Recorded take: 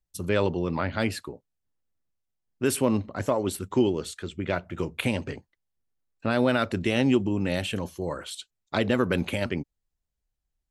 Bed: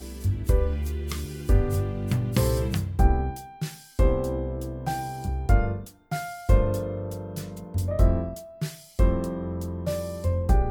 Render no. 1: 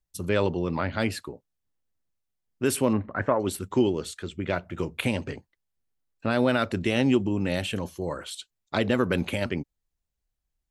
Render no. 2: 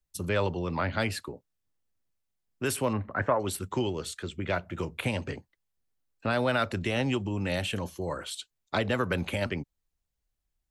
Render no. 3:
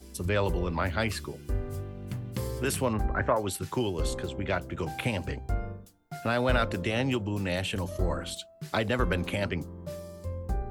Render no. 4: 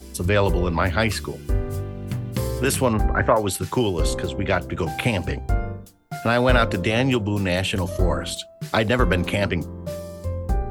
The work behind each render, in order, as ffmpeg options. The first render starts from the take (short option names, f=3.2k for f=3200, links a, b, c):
-filter_complex "[0:a]asettb=1/sr,asplit=3[a][b][c];[a]atrim=end=2.934[d];[b]atrim=start=2.93:end=3.4,asetpts=PTS-STARTPTS,afade=t=in:d=0.004:c=qsin,afade=t=out:st=0.466:d=0.004:c=qsin,lowpass=f=1.7k:t=q:w=2.7[e];[c]atrim=start=3.396[f];[d][e]acrossfade=d=0.004:c1=hsin:c2=qsin[g];[g][f]acrossfade=d=0.004:c1=qsin:c2=hsin"
-filter_complex "[0:a]acrossover=split=160|500|1600[a][b][c][d];[b]acompressor=threshold=-36dB:ratio=6[e];[d]alimiter=limit=-22dB:level=0:latency=1:release=150[f];[a][e][c][f]amix=inputs=4:normalize=0"
-filter_complex "[1:a]volume=-10.5dB[a];[0:a][a]amix=inputs=2:normalize=0"
-af "volume=8dB"